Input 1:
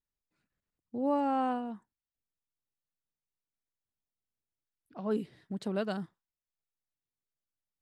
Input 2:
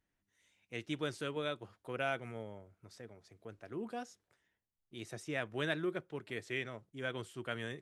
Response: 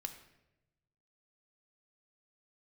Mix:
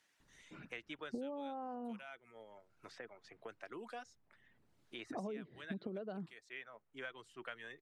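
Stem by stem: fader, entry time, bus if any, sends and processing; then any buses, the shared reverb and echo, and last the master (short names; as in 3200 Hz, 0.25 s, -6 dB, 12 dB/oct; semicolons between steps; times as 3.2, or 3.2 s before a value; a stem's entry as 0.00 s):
-0.5 dB, 0.20 s, no send, formant sharpening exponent 1.5; steep low-pass 4800 Hz; compressor, threshold -38 dBFS, peak gain reduction 12.5 dB
-4.5 dB, 0.00 s, no send, reverb removal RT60 0.58 s; band-pass 5600 Hz, Q 0.78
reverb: off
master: high shelf 2100 Hz -10 dB; three-band squash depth 100%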